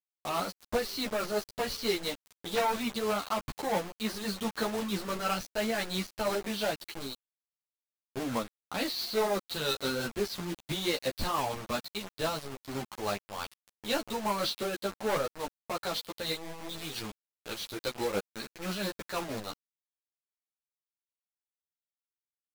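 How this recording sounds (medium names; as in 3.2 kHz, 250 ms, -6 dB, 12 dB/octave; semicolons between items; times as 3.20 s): a quantiser's noise floor 6-bit, dither none; tremolo triangle 5.9 Hz, depth 40%; a shimmering, thickened sound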